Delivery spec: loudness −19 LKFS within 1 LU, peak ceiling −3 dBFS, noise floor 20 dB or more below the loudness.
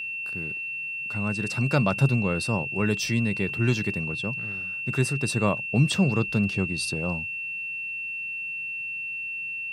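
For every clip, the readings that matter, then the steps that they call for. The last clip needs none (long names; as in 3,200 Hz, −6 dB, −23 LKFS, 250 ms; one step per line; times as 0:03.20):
interfering tone 2,700 Hz; level of the tone −30 dBFS; integrated loudness −26.5 LKFS; sample peak −8.5 dBFS; target loudness −19.0 LKFS
→ notch filter 2,700 Hz, Q 30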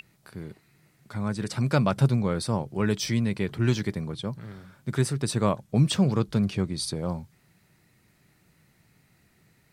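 interfering tone none found; integrated loudness −26.5 LKFS; sample peak −9.0 dBFS; target loudness −19.0 LKFS
→ level +7.5 dB
brickwall limiter −3 dBFS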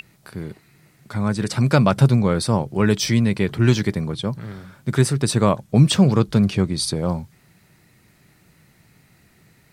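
integrated loudness −19.5 LKFS; sample peak −3.0 dBFS; background noise floor −57 dBFS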